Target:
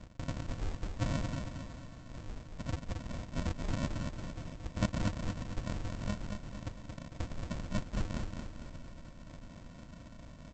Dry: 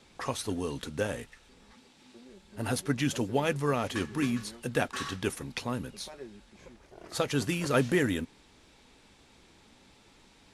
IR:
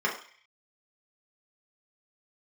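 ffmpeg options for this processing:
-filter_complex "[0:a]aphaser=in_gain=1:out_gain=1:delay=3.4:decay=0.41:speed=0.46:type=sinusoidal,areverse,acompressor=threshold=-40dB:ratio=16,areverse,afftfilt=real='re*between(b*sr/4096,360,3900)':imag='im*between(b*sr/4096,360,3900)':win_size=4096:overlap=0.75,acrossover=split=460[link_01][link_02];[link_01]acompressor=threshold=-49dB:ratio=10[link_03];[link_03][link_02]amix=inputs=2:normalize=0,aresample=16000,acrusher=samples=39:mix=1:aa=0.000001,aresample=44100,aecho=1:1:226|452|678|904|1130|1356:0.562|0.276|0.135|0.0662|0.0324|0.0159,volume=11dB"

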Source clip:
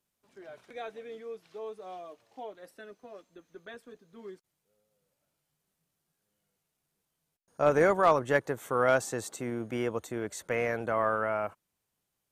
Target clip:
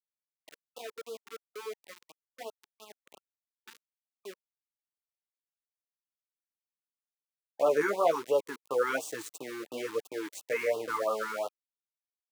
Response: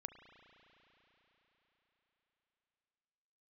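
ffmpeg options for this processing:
-filter_complex "[0:a]asettb=1/sr,asplit=3[link_01][link_02][link_03];[link_01]atrim=end=8.904[link_04];[link_02]atrim=start=8.9:end=11.02,asetpts=PTS-STARTPTS,afade=type=in:duration=0.004:curve=qsin,afade=type=out:start_time=2.116:duration=0.004:curve=qsin,aecho=1:1:6.7:0.59,atrim=end_sample=93492[link_05];[link_03]atrim=start=11.016[link_06];[link_04][link_05]acrossfade=duration=0.004:curve1=hsin:curve2=qsin[link_07];[link_07][link_06]acrossfade=duration=0.004:curve1=qsin:curve2=hsin,flanger=delay=9.1:depth=5.2:regen=21:speed=1.2:shape=sinusoidal,equalizer=frequency=530:width_type=o:width=0.88:gain=4,aeval=exprs='val(0)*gte(abs(val(0)),0.0106)':channel_layout=same,highpass=330,afftfilt=real='re*(1-between(b*sr/1024,560*pow(1900/560,0.5+0.5*sin(2*PI*2.9*pts/sr))/1.41,560*pow(1900/560,0.5+0.5*sin(2*PI*2.9*pts/sr))*1.41))':imag='im*(1-between(b*sr/1024,560*pow(1900/560,0.5+0.5*sin(2*PI*2.9*pts/sr))/1.41,560*pow(1900/560,0.5+0.5*sin(2*PI*2.9*pts/sr))*1.41))':win_size=1024:overlap=0.75,volume=1.5dB"

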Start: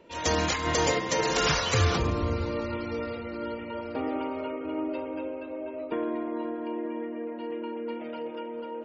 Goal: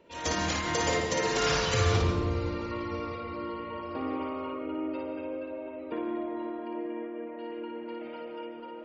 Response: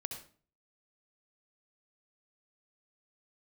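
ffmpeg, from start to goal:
-filter_complex "[0:a]asplit=2[link_01][link_02];[1:a]atrim=start_sample=2205,asetrate=34398,aresample=44100,adelay=57[link_03];[link_02][link_03]afir=irnorm=-1:irlink=0,volume=-2dB[link_04];[link_01][link_04]amix=inputs=2:normalize=0,asettb=1/sr,asplit=3[link_05][link_06][link_07];[link_05]atrim=end=2.714[link_08];[link_06]atrim=start=2.71:end=4.59,asetpts=PTS-STARTPTS,afade=type=in:duration=0.004:curve=qsin,afade=type=out:start_time=1.876:duration=0.004:curve=qsin,aeval=exprs='val(0)+0.0158*sin(2*PI*1100*n/s)':channel_layout=same[link_09];[link_07]atrim=start=4.586[link_10];[link_08][link_09]acrossfade=duration=0.004:curve1=hsin:curve2=qsin[link_11];[link_11][link_10]acrossfade=duration=0.004:curve1=qsin:curve2=hsin,volume=-4.5dB"

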